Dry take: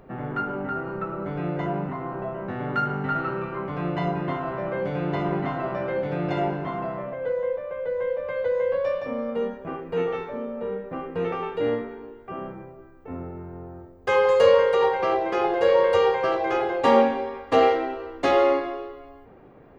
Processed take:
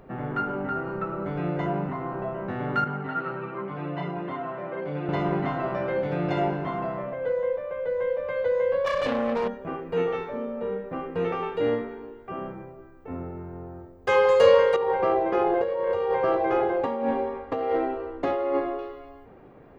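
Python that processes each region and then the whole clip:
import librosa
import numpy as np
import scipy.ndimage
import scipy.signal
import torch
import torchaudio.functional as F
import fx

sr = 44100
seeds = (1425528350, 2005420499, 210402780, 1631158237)

y = fx.chain(x, sr, fx.bandpass_edges(low_hz=140.0, high_hz=4000.0),
    fx.detune_double(cents=11), at=(2.84, 5.09))
y = fx.chain(y, sr, fx.self_delay(depth_ms=0.51),
    fx.env_flatten(amount_pct=100), at=(8.86, 9.48))
y = fx.chain(y, sr, fx.lowpass(hz=1000.0, slope=6),
    fx.over_compress(threshold_db=-24.0, ratio=-1.0), at=(14.76, 18.79))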